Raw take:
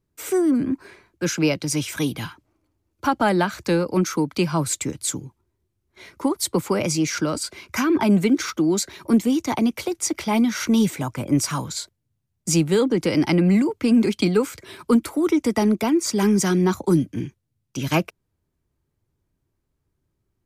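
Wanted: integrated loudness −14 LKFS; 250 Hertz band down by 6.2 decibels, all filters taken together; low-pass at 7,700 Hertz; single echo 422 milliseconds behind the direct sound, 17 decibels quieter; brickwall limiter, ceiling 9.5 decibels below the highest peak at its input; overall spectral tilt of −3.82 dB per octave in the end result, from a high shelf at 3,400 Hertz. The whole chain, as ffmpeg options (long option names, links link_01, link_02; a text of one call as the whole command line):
ffmpeg -i in.wav -af "lowpass=7700,equalizer=frequency=250:width_type=o:gain=-8.5,highshelf=frequency=3400:gain=6.5,alimiter=limit=-16dB:level=0:latency=1,aecho=1:1:422:0.141,volume=12.5dB" out.wav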